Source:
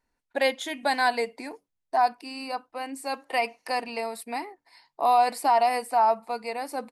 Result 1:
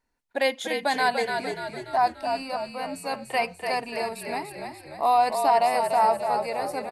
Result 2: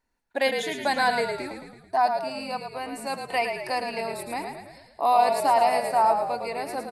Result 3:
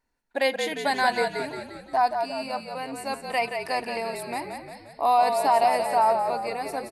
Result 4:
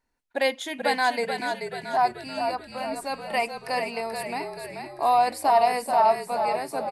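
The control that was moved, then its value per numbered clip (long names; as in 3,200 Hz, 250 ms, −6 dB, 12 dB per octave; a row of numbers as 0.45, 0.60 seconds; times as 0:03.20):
echo with shifted repeats, delay time: 292, 110, 176, 434 milliseconds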